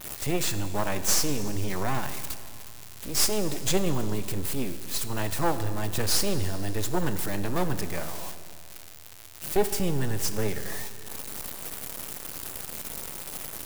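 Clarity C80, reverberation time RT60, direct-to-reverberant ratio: 12.0 dB, 2.6 s, 10.0 dB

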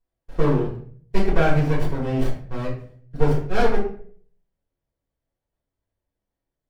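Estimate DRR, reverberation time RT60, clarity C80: -6.5 dB, 0.50 s, 10.0 dB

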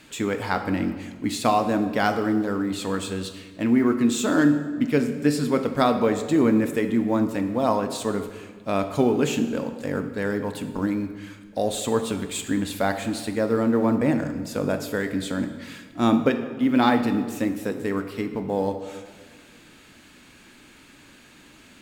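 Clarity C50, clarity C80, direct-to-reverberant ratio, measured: 9.5 dB, 11.0 dB, 8.0 dB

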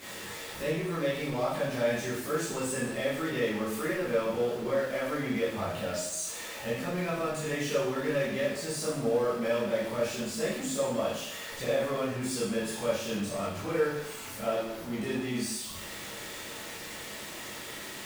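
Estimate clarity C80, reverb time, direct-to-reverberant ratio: 5.0 dB, 0.80 s, -10.0 dB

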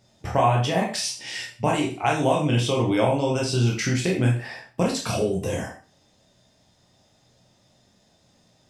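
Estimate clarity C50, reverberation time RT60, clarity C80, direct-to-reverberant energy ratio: 6.5 dB, 0.40 s, 11.0 dB, -2.5 dB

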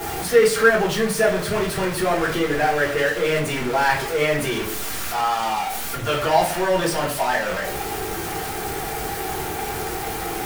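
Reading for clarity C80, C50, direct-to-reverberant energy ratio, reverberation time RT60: 13.0 dB, 8.0 dB, -5.5 dB, 0.45 s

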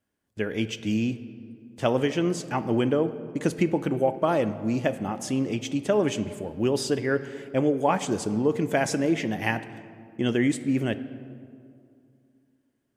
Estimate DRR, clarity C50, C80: 11.0 dB, 13.5 dB, 14.5 dB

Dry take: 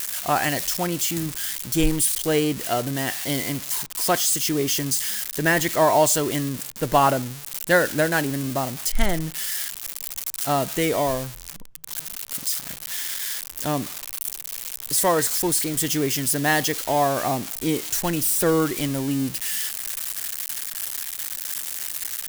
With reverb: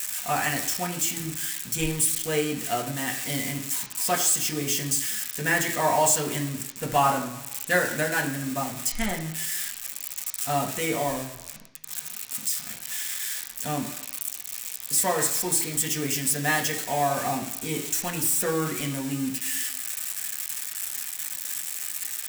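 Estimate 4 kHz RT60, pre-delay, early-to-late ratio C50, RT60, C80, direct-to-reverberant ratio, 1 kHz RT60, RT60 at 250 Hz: 0.95 s, 3 ms, 9.5 dB, 1.0 s, 11.5 dB, 0.5 dB, 1.0 s, 0.90 s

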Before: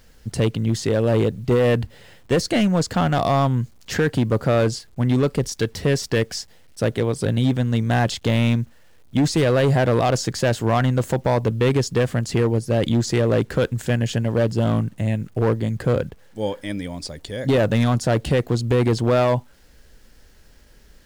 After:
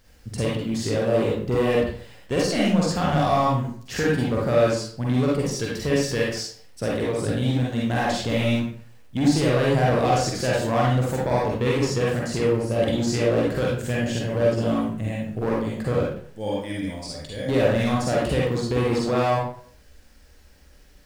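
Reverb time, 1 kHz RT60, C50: 0.55 s, 0.55 s, -1.5 dB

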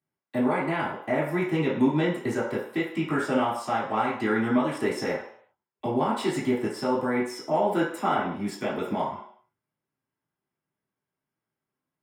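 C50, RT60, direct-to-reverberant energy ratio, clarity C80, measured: 3.5 dB, 0.60 s, -9.5 dB, 8.0 dB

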